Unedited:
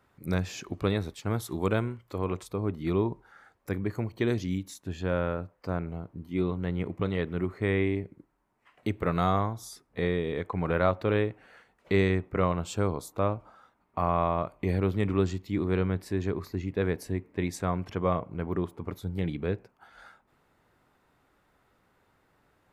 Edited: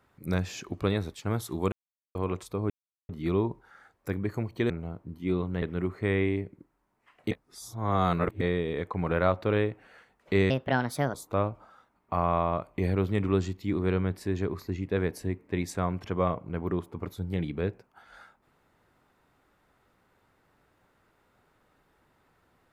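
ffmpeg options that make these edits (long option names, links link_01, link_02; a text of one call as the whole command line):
ffmpeg -i in.wav -filter_complex "[0:a]asplit=10[link_01][link_02][link_03][link_04][link_05][link_06][link_07][link_08][link_09][link_10];[link_01]atrim=end=1.72,asetpts=PTS-STARTPTS,afade=type=out:start_time=1.716:duration=0.004:curve=hsin[link_11];[link_02]atrim=start=1.72:end=2.15,asetpts=PTS-STARTPTS,volume=0[link_12];[link_03]atrim=start=2.15:end=2.7,asetpts=PTS-STARTPTS,afade=type=in:duration=0.004:curve=hsin,afade=type=out:start_time=0.546:duration=0.004:curve=hsin,apad=pad_dur=0.39[link_13];[link_04]atrim=start=2.7:end=4.312,asetpts=PTS-STARTPTS,afade=type=in:duration=0.004:curve=hsin[link_14];[link_05]atrim=start=5.788:end=6.712[link_15];[link_06]atrim=start=7.208:end=8.902[link_16];[link_07]atrim=start=8.898:end=10.002,asetpts=PTS-STARTPTS,areverse[link_17];[link_08]atrim=start=9.998:end=12.094[link_18];[link_09]atrim=start=12.09:end=12.99,asetpts=PTS-STARTPTS,asetrate=62181,aresample=44100[link_19];[link_10]atrim=start=12.986[link_20];[link_11][link_12][link_13][link_14]concat=n=4:v=0:a=1[link_21];[link_21][link_15]acrossfade=duration=0.004:curve1=hsin:curve2=hsin[link_22];[link_22][link_16]acrossfade=duration=0.004:curve1=hsin:curve2=hsin[link_23];[link_23][link_17]acrossfade=duration=0.004:curve1=hsin:curve2=hsin[link_24];[link_24][link_18]acrossfade=duration=0.004:curve1=hsin:curve2=hsin[link_25];[link_25][link_19]acrossfade=duration=0.004:curve1=hsin:curve2=hsin[link_26];[link_26][link_20]acrossfade=duration=0.004:curve1=hsin:curve2=hsin" out.wav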